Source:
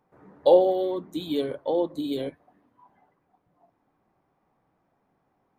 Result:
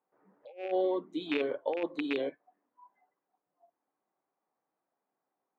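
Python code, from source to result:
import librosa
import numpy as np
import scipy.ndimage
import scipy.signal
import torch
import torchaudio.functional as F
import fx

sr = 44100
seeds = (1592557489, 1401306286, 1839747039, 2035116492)

y = fx.rattle_buzz(x, sr, strikes_db=-31.0, level_db=-19.0)
y = fx.bandpass_edges(y, sr, low_hz=340.0, high_hz=2800.0)
y = fx.over_compress(y, sr, threshold_db=-27.0, ratio=-0.5)
y = fx.noise_reduce_blind(y, sr, reduce_db=13)
y = y * 10.0 ** (-4.0 / 20.0)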